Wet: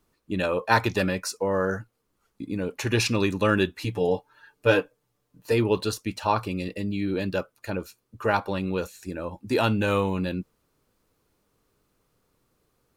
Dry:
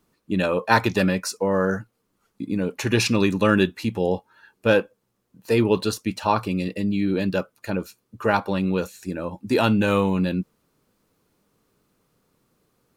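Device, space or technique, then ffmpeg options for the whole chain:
low shelf boost with a cut just above: -filter_complex "[0:a]lowshelf=frequency=79:gain=7.5,equalizer=frequency=190:width_type=o:width=0.99:gain=-5.5,asettb=1/sr,asplit=3[link_01][link_02][link_03];[link_01]atrim=end=3.804[link_04];[link_02]atrim=start=3.8:end=5.52,asetpts=PTS-STARTPTS,afade=type=in:duration=0.004:curve=qsin,afade=type=out:start_time=1.716:duration=0.004:curve=qsin,aecho=1:1:6.8:0.73,atrim=end_sample=75852[link_05];[link_03]atrim=start=5.516[link_06];[link_04][link_05]acrossfade=duration=0.004:curve1=hsin:curve2=qsin[link_07];[link_07][link_06]acrossfade=duration=0.004:curve1=qsin:curve2=hsin,volume=-2.5dB"

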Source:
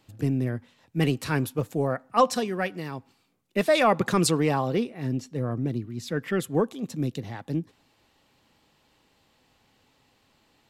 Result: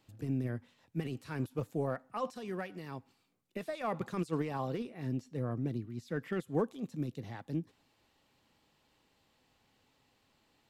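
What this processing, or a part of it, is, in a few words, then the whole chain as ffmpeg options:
de-esser from a sidechain: -filter_complex "[0:a]asplit=2[link_01][link_02];[link_02]highpass=6400,apad=whole_len=471643[link_03];[link_01][link_03]sidechaincompress=threshold=-56dB:ratio=3:attack=0.63:release=25,volume=-7dB"

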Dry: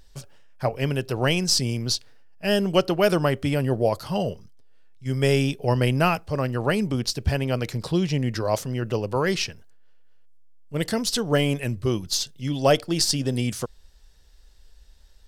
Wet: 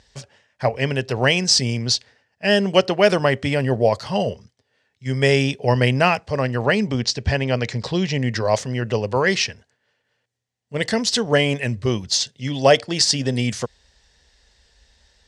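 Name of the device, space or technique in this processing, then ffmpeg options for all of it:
car door speaker: -filter_complex "[0:a]highpass=84,equalizer=frequency=160:width_type=q:width=4:gain=-7,equalizer=frequency=320:width_type=q:width=4:gain=-8,equalizer=frequency=1300:width_type=q:width=4:gain=-5,equalizer=frequency=1900:width_type=q:width=4:gain=6,lowpass=frequency=7700:width=0.5412,lowpass=frequency=7700:width=1.3066,asettb=1/sr,asplit=3[link_01][link_02][link_03];[link_01]atrim=end=6.654[link_04];[link_02]atrim=start=6.65:end=8.16,asetpts=PTS-STARTPTS,afade=type=in:duration=0.004:curve=qsin,afade=type=out:start_time=1.506:duration=0.004:curve=qsin,lowpass=frequency=7900:width=0.5412,lowpass=frequency=7900:width=1.3066[link_05];[link_03]atrim=start=8.156[link_06];[link_04][link_05]acrossfade=duration=0.004:curve1=hsin:curve2=qsin[link_07];[link_07][link_06]acrossfade=duration=0.004:curve1=qsin:curve2=hsin,volume=5.5dB"

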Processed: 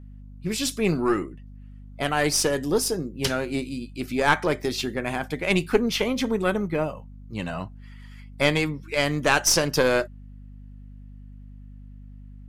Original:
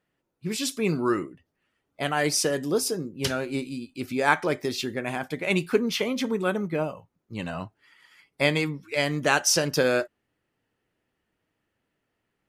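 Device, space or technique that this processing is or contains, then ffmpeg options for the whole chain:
valve amplifier with mains hum: -af "aeval=exprs='(tanh(3.16*val(0)+0.55)-tanh(0.55))/3.16':channel_layout=same,aeval=exprs='val(0)+0.00501*(sin(2*PI*50*n/s)+sin(2*PI*2*50*n/s)/2+sin(2*PI*3*50*n/s)/3+sin(2*PI*4*50*n/s)/4+sin(2*PI*5*50*n/s)/5)':channel_layout=same,volume=4.5dB"

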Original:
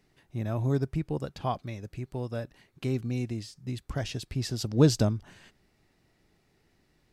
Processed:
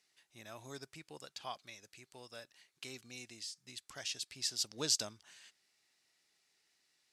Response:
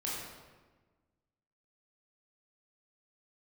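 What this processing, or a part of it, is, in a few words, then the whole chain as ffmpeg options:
piezo pickup straight into a mixer: -af "lowpass=7700,aderivative,volume=5.5dB"

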